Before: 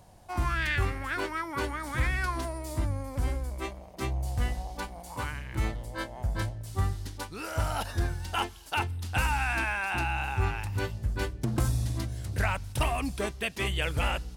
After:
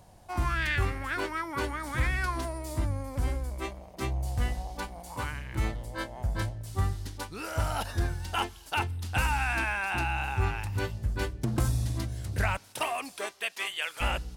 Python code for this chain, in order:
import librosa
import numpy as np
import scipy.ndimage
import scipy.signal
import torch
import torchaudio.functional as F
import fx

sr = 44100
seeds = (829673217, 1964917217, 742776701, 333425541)

y = fx.highpass(x, sr, hz=fx.line((12.56, 330.0), (14.0, 1100.0)), slope=12, at=(12.56, 14.0), fade=0.02)